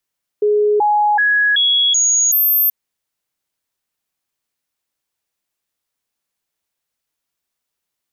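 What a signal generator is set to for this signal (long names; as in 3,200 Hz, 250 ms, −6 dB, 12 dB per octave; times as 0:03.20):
stepped sweep 418 Hz up, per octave 1, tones 6, 0.38 s, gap 0.00 s −11 dBFS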